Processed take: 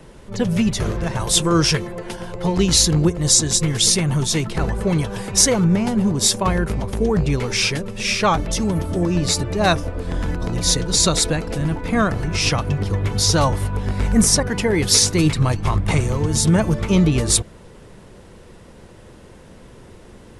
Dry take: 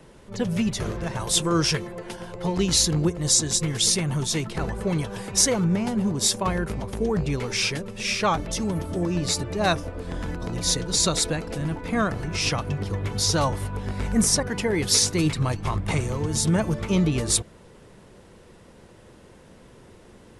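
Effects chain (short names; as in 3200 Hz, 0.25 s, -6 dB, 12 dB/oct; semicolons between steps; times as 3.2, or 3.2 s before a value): low shelf 79 Hz +6 dB; gain +5 dB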